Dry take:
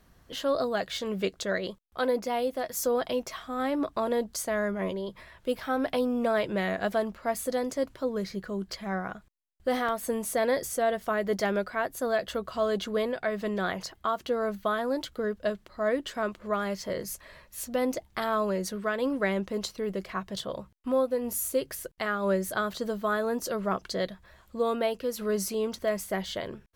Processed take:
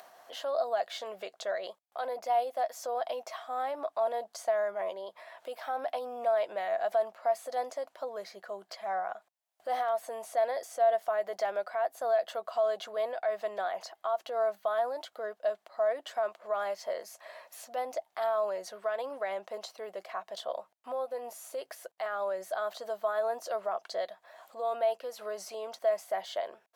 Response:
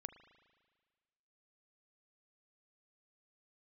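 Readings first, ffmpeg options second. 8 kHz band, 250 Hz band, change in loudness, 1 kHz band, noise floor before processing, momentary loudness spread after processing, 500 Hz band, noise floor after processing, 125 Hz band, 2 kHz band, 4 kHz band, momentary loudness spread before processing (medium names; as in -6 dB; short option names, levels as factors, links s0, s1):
-11.0 dB, -24.0 dB, -3.5 dB, 0.0 dB, -61 dBFS, 11 LU, -2.5 dB, -74 dBFS, under -25 dB, -8.0 dB, -7.0 dB, 7 LU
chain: -filter_complex "[0:a]acrossover=split=6400[s0][s1];[s1]acompressor=threshold=0.00562:ratio=4:attack=1:release=60[s2];[s0][s2]amix=inputs=2:normalize=0,alimiter=limit=0.0668:level=0:latency=1:release=50,acompressor=mode=upward:threshold=0.0141:ratio=2.5,highpass=f=690:t=q:w=4.9,volume=0.501"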